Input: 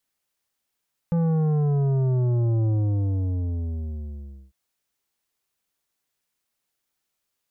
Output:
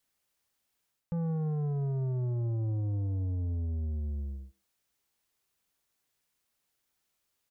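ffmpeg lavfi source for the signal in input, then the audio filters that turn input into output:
-f lavfi -i "aevalsrc='0.1*clip((3.4-t)/1.85,0,1)*tanh(3.16*sin(2*PI*170*3.4/log(65/170)*(exp(log(65/170)*t/3.4)-1)))/tanh(3.16)':duration=3.4:sample_rate=44100"
-filter_complex "[0:a]equalizer=frequency=61:width_type=o:width=2.1:gain=3.5,areverse,acompressor=threshold=-33dB:ratio=4,areverse,asplit=2[link_01][link_02];[link_02]adelay=130,highpass=300,lowpass=3400,asoftclip=type=hard:threshold=-38dB,volume=-16dB[link_03];[link_01][link_03]amix=inputs=2:normalize=0"

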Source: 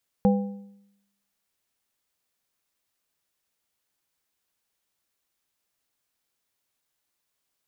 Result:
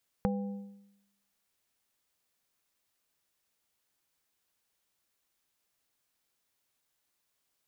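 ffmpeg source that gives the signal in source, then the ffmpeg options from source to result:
-f lavfi -i "aevalsrc='0.178*pow(10,-3*t/0.83)*sin(2*PI*200*t)+0.1*pow(10,-3*t/0.631)*sin(2*PI*500*t)+0.0562*pow(10,-3*t/0.548)*sin(2*PI*800*t)':duration=1.55:sample_rate=44100"
-af "acompressor=threshold=-29dB:ratio=6"

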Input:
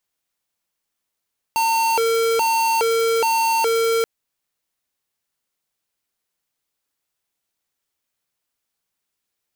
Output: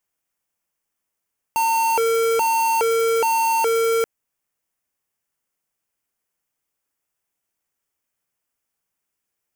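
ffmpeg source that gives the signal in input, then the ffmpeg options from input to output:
-f lavfi -i "aevalsrc='0.119*(2*lt(mod((681.5*t+225.5/1.2*(0.5-abs(mod(1.2*t,1)-0.5))),1),0.5)-1)':duration=2.48:sample_rate=44100"
-af "equalizer=frequency=4000:width_type=o:width=0.53:gain=-10.5"

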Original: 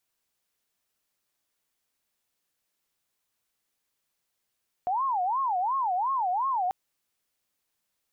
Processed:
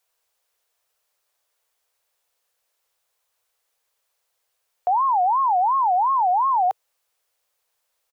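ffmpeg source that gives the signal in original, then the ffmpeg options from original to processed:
-f lavfi -i "aevalsrc='0.0631*sin(2*PI*(902.5*t-187.5/(2*PI*2.8)*sin(2*PI*2.8*t)))':duration=1.84:sample_rate=44100"
-af "firequalizer=gain_entry='entry(100,0);entry(200,-19);entry(470,9);entry(930,8);entry(1900,5)':delay=0.05:min_phase=1"

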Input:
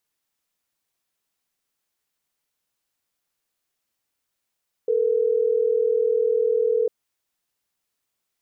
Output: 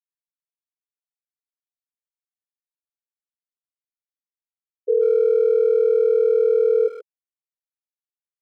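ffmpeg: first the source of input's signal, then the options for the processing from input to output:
-f lavfi -i "aevalsrc='0.0944*(sin(2*PI*440*t)+sin(2*PI*480*t))*clip(min(mod(t,6),2-mod(t,6))/0.005,0,1)':duration=3.12:sample_rate=44100"
-filter_complex "[0:a]afftfilt=real='re*gte(hypot(re,im),0.316)':imag='im*gte(hypot(re,im),0.316)':win_size=1024:overlap=0.75,lowshelf=frequency=410:gain=7.5,asplit=2[link_01][link_02];[link_02]adelay=130,highpass=300,lowpass=3400,asoftclip=type=hard:threshold=-20dB,volume=-13dB[link_03];[link_01][link_03]amix=inputs=2:normalize=0"

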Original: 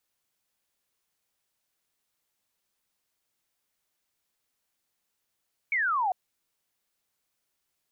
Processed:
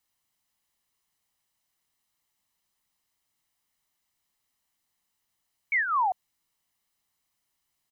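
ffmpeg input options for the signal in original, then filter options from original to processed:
-f lavfi -i "aevalsrc='0.0668*clip(t/0.002,0,1)*clip((0.4-t)/0.002,0,1)*sin(2*PI*2300*0.4/log(710/2300)*(exp(log(710/2300)*t/0.4)-1))':duration=0.4:sample_rate=44100"
-af "aecho=1:1:1:0.44"

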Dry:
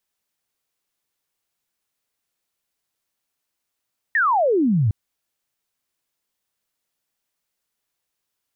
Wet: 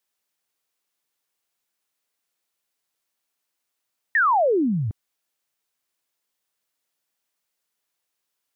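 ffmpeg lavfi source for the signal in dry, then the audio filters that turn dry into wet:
-f lavfi -i "aevalsrc='0.178*clip(t/0.002,0,1)*clip((0.76-t)/0.002,0,1)*sin(2*PI*1900*0.76/log(96/1900)*(exp(log(96/1900)*t/0.76)-1))':duration=0.76:sample_rate=44100"
-af "lowshelf=frequency=160:gain=-10.5"

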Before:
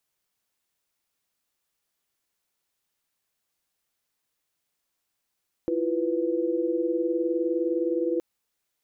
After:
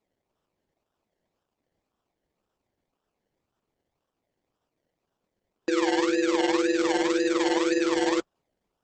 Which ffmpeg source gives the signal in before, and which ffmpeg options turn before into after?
-f lavfi -i "aevalsrc='0.0422*(sin(2*PI*329.63*t)+sin(2*PI*349.23*t)+sin(2*PI*493.88*t))':duration=2.52:sample_rate=44100"
-filter_complex "[0:a]lowshelf=frequency=190:width_type=q:width=1.5:gain=-12.5,acrossover=split=190[link_01][link_02];[link_02]acrusher=samples=28:mix=1:aa=0.000001:lfo=1:lforange=16.8:lforate=1.9[link_03];[link_01][link_03]amix=inputs=2:normalize=0" -ar 48000 -c:a libopus -b:a 12k

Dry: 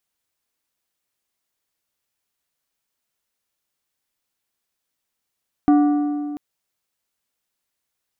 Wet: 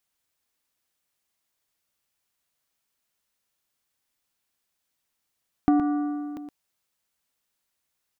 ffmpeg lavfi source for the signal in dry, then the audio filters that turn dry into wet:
-f lavfi -i "aevalsrc='0.316*pow(10,-3*t/2.4)*sin(2*PI*293*t)+0.106*pow(10,-3*t/1.823)*sin(2*PI*732.5*t)+0.0355*pow(10,-3*t/1.583)*sin(2*PI*1172*t)+0.0119*pow(10,-3*t/1.481)*sin(2*PI*1465*t)+0.00398*pow(10,-3*t/1.369)*sin(2*PI*1904.5*t)':duration=0.69:sample_rate=44100"
-af "equalizer=frequency=410:width=1.5:gain=-2,acompressor=threshold=-17dB:ratio=6,aecho=1:1:118:0.376"

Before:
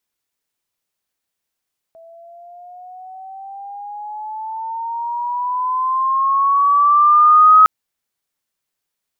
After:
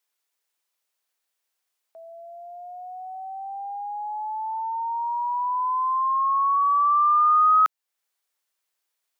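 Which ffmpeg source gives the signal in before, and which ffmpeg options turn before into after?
-f lavfi -i "aevalsrc='pow(10,(-4.5+35*(t/5.71-1))/20)*sin(2*PI*656*5.71/(11.5*log(2)/12)*(exp(11.5*log(2)/12*t/5.71)-1))':duration=5.71:sample_rate=44100"
-af "highpass=490,acompressor=threshold=-31dB:ratio=1.5"

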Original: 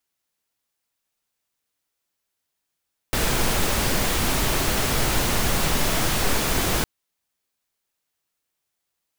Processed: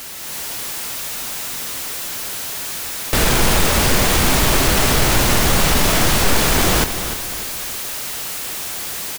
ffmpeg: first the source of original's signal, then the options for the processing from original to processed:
-f lavfi -i "anoisesrc=color=pink:amplitude=0.432:duration=3.71:sample_rate=44100:seed=1"
-af "aeval=exprs='val(0)+0.5*0.0501*sgn(val(0))':channel_layout=same,dynaudnorm=framelen=180:gausssize=3:maxgain=5.5dB,aecho=1:1:297|594|891|1188:0.299|0.119|0.0478|0.0191"

